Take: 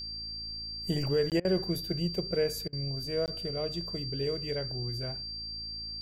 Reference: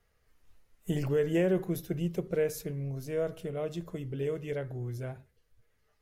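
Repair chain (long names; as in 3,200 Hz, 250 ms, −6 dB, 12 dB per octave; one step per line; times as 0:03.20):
hum removal 55 Hz, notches 6
notch filter 4,700 Hz, Q 30
repair the gap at 0:01.30/0:03.26, 18 ms
repair the gap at 0:01.40/0:02.68, 47 ms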